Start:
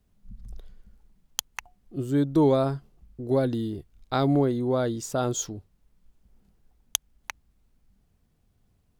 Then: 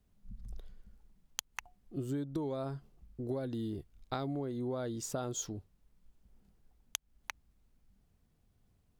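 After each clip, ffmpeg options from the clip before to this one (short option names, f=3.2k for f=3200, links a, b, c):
-af "acompressor=threshold=-29dB:ratio=16,volume=-4dB"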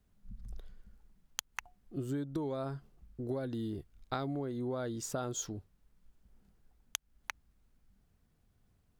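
-af "equalizer=f=1.5k:t=o:w=0.77:g=3.5"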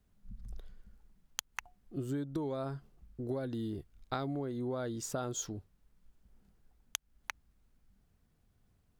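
-af anull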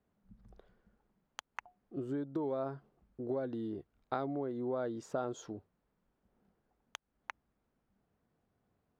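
-af "bandpass=f=600:t=q:w=0.62:csg=0,volume=2.5dB"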